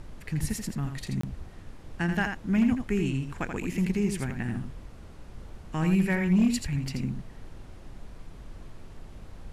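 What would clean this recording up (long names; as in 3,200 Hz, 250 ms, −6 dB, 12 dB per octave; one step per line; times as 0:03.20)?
clipped peaks rebuilt −16.5 dBFS
repair the gap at 0:01.21, 24 ms
noise reduction from a noise print 28 dB
echo removal 83 ms −6.5 dB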